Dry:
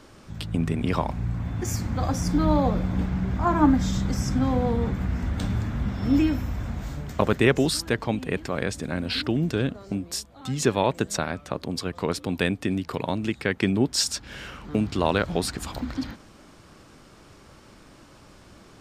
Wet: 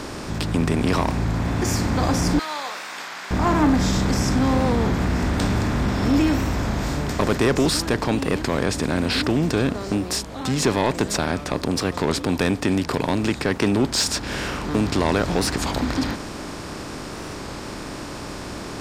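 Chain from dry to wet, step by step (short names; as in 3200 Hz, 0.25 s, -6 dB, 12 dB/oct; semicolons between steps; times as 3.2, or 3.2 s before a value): per-bin compression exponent 0.6; 2.39–3.31 HPF 1300 Hz 12 dB/oct; soft clip -12 dBFS, distortion -14 dB; record warp 33 1/3 rpm, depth 100 cents; gain +1.5 dB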